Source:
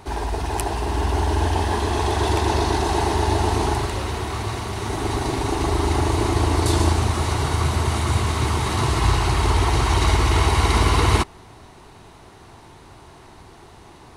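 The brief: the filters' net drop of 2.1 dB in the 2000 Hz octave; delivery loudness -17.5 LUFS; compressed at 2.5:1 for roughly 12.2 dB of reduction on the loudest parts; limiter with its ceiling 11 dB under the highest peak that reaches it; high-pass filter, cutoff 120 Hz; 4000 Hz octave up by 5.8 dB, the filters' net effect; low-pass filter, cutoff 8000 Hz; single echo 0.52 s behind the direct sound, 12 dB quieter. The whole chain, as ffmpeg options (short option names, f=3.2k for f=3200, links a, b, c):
-af "highpass=120,lowpass=8k,equalizer=f=2k:t=o:g=-5,equalizer=f=4k:t=o:g=8.5,acompressor=threshold=-36dB:ratio=2.5,alimiter=level_in=4.5dB:limit=-24dB:level=0:latency=1,volume=-4.5dB,aecho=1:1:520:0.251,volume=20dB"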